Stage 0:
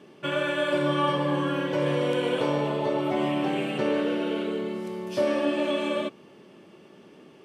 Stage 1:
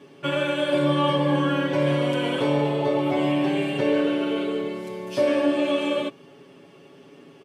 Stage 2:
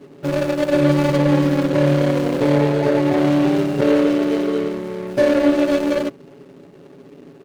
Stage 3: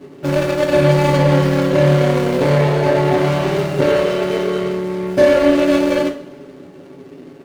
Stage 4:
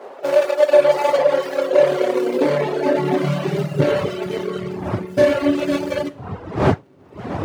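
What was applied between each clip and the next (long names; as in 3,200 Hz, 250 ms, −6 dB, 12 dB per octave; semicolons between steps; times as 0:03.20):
comb filter 7.2 ms, depth 91%
running median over 41 samples; level +7.5 dB
convolution reverb, pre-delay 3 ms, DRR 2.5 dB; level +2.5 dB
wind on the microphone 640 Hz −27 dBFS; reverb reduction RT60 1.5 s; high-pass filter sweep 570 Hz → 98 Hz, 0:01.51–0:04.21; level −2.5 dB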